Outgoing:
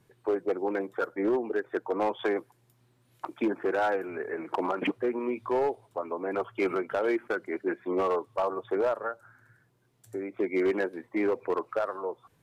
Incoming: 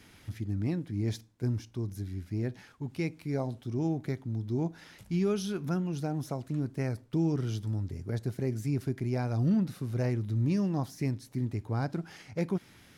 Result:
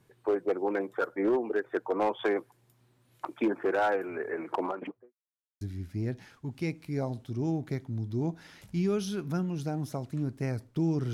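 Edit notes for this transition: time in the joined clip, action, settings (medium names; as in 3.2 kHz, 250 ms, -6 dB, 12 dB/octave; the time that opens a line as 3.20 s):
outgoing
4.43–5.14 s: studio fade out
5.14–5.61 s: mute
5.61 s: go over to incoming from 1.98 s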